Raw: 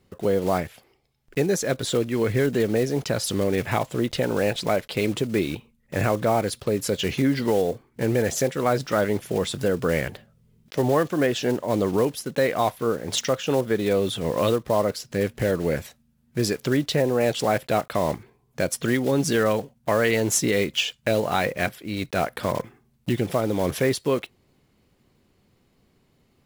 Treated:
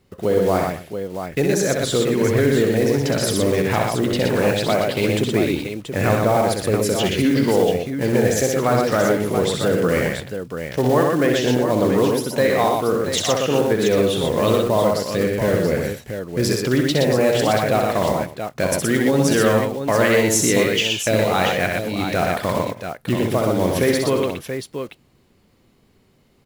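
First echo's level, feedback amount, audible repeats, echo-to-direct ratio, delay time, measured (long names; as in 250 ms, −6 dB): −5.0 dB, repeats not evenly spaced, 4, −0.5 dB, 64 ms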